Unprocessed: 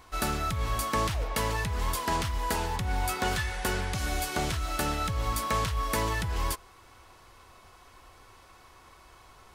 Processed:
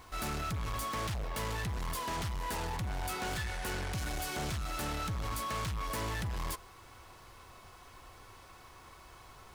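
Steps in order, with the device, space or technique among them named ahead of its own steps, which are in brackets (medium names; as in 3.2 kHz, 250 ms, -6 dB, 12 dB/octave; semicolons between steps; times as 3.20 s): open-reel tape (saturation -34 dBFS, distortion -8 dB; peaking EQ 130 Hz +3.5 dB 0.99 oct; white noise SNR 35 dB)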